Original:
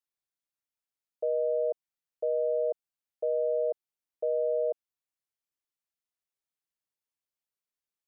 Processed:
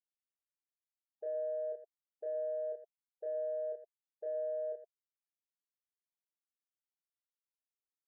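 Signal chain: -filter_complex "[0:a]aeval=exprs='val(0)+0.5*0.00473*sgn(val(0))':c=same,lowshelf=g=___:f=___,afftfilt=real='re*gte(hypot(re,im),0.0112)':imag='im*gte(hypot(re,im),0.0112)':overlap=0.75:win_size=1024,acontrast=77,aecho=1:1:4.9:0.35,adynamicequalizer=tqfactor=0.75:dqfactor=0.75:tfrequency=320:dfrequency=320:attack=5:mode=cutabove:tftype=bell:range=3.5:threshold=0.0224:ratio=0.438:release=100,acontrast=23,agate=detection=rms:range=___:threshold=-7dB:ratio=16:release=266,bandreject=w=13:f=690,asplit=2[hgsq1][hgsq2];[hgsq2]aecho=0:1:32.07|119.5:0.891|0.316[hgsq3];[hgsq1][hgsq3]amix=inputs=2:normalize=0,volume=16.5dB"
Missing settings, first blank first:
5.5, 450, -43dB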